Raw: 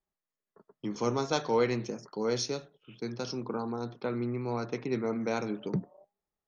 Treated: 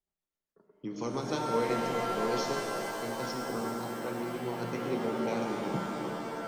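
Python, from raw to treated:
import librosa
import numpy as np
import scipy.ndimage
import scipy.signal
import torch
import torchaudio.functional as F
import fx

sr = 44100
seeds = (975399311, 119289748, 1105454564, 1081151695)

y = fx.rotary(x, sr, hz=7.5)
y = fx.rev_shimmer(y, sr, seeds[0], rt60_s=3.9, semitones=7, shimmer_db=-2, drr_db=1.5)
y = F.gain(torch.from_numpy(y), -2.5).numpy()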